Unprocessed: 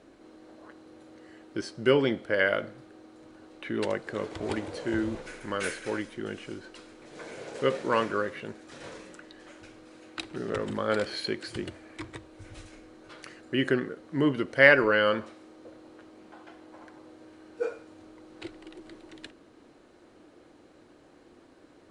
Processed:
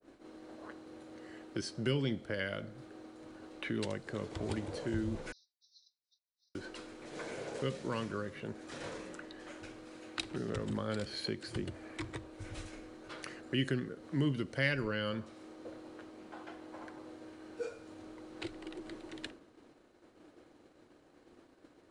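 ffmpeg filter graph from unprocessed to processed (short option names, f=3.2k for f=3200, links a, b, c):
-filter_complex "[0:a]asettb=1/sr,asplit=3[a][b][c];[a]atrim=end=5.324[d];[b]atrim=start=5.32:end=6.55,asetpts=PTS-STARTPTS,afade=t=in:d=0.004:c=qsin,afade=t=out:st=1.226:d=0.004:c=qsin,acompressor=threshold=-42dB:ratio=4:attack=3.2:release=140:knee=1:detection=peak,asuperpass=centerf=4700:order=20:qfactor=2,aecho=1:1:5.5:0.61,atrim=end_sample=54243[e];[c]atrim=start=6.546[f];[d][e]acrossfade=d=0.004:c1=hsin:c2=qsin[g];[g][f]acrossfade=d=0.004:c1=qsin:c2=hsin,agate=range=-33dB:threshold=-49dB:ratio=3:detection=peak,acrossover=split=200|3000[h][i][j];[i]acompressor=threshold=-41dB:ratio=4[k];[h][k][j]amix=inputs=3:normalize=0,adynamicequalizer=threshold=0.002:dfrequency=1700:dqfactor=0.7:tfrequency=1700:tqfactor=0.7:attack=5:release=100:ratio=0.375:range=3.5:mode=cutabove:tftype=highshelf,volume=1.5dB"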